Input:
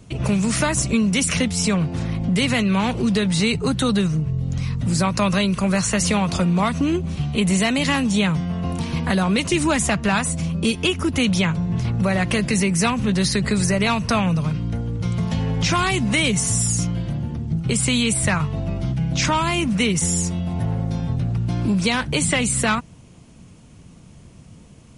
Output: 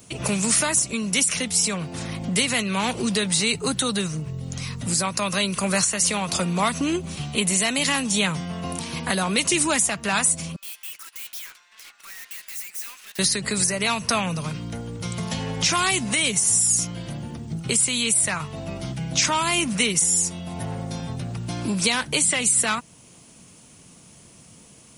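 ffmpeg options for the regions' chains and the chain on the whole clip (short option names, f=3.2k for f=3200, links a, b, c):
-filter_complex "[0:a]asettb=1/sr,asplit=3[a][b][c];[a]atrim=end=10.564[d];[b]atrim=start=10.56:end=13.19,asetpts=PTS-STARTPTS,afade=t=in:d=0.004:c=qsin,afade=t=out:st=2.626:d=0.004:c=qsin,highpass=f=1.4k:w=0.5412,highpass=f=1.4k:w=1.3066,highshelf=f=4.7k:g=-9.5,aeval=exprs='(tanh(141*val(0)+0.8)-tanh(0.8))/141':c=same[e];[c]atrim=start=13.186[f];[d][e]acrossfade=d=0.004:c1=hsin:c2=qsin[g];[g][f]acrossfade=d=0.004:c1=qsin:c2=hsin,aemphasis=mode=production:type=bsi,alimiter=limit=-9dB:level=0:latency=1:release=499"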